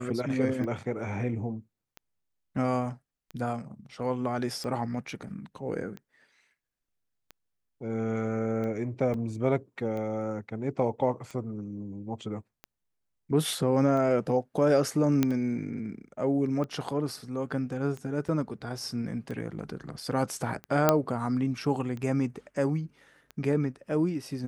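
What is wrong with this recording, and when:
tick 45 rpm -26 dBFS
9.14 s: dropout 2.4 ms
15.23 s: pop -11 dBFS
18.28–18.29 s: dropout 6.1 ms
20.89 s: pop -6 dBFS

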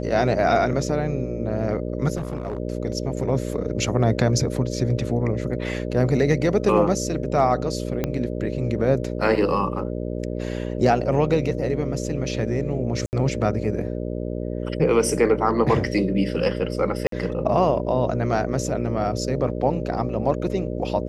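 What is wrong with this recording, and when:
buzz 60 Hz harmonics 10 -28 dBFS
2.16–2.58 s: clipped -23 dBFS
8.04 s: pop -10 dBFS
13.06–13.13 s: dropout 69 ms
17.07–17.12 s: dropout 53 ms

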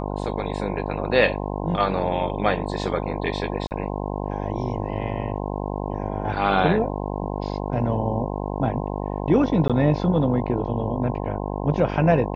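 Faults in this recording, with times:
buzz 50 Hz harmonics 21 -28 dBFS
3.67–3.71 s: dropout 39 ms
9.68–9.70 s: dropout 16 ms

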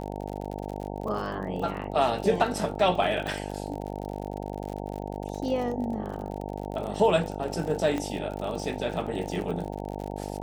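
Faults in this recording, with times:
buzz 50 Hz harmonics 18 -35 dBFS
crackle 57 per s -34 dBFS
3.27 s: pop
7.98 s: pop -18 dBFS

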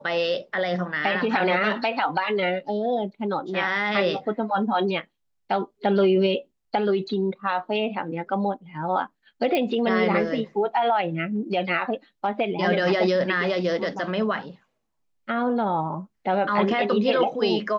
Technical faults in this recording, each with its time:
9.55 s: pop -12 dBFS

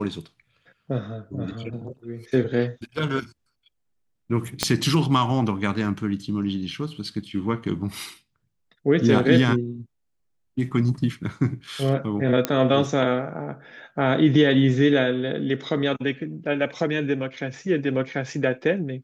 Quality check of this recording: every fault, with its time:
4.63 s: pop -5 dBFS
12.45 s: pop -6 dBFS

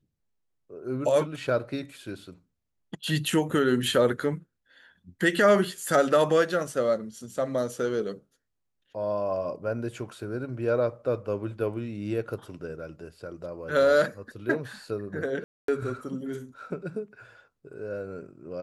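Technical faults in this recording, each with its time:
15.44–15.68 s: dropout 243 ms

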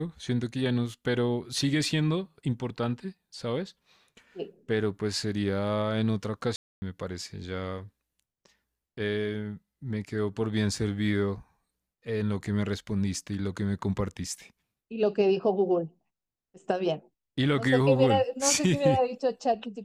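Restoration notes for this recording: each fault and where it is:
6.56–6.82 s: dropout 260 ms

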